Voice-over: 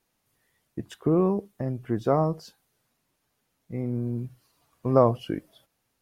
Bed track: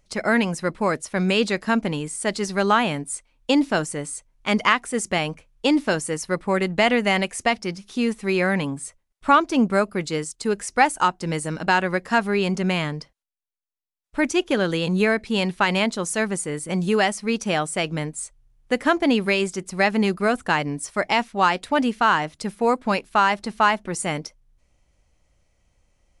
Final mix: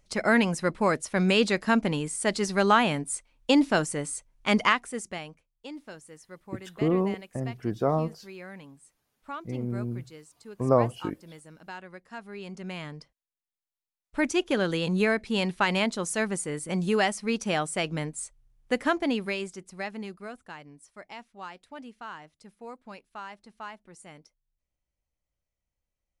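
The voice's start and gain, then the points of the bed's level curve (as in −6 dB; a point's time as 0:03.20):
5.75 s, −2.5 dB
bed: 0:04.60 −2 dB
0:05.55 −22 dB
0:12.11 −22 dB
0:13.54 −4.5 dB
0:18.75 −4.5 dB
0:20.56 −22.5 dB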